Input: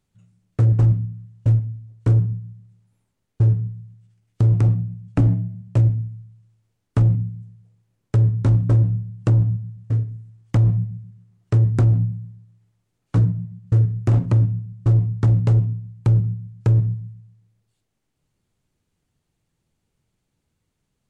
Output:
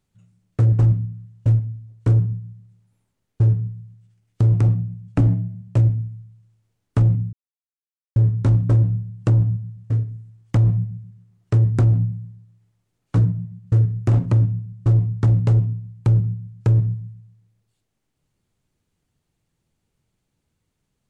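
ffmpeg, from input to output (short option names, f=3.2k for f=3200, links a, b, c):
-filter_complex "[0:a]asplit=3[a][b][c];[a]atrim=end=7.33,asetpts=PTS-STARTPTS,afade=t=out:st=7.326:d=0.004:c=hsin[d];[b]atrim=start=7.33:end=8.16,asetpts=PTS-STARTPTS,volume=0[e];[c]atrim=start=8.16,asetpts=PTS-STARTPTS,afade=t=in:d=0.004:c=hsin[f];[d][e][f]concat=n=3:v=0:a=1"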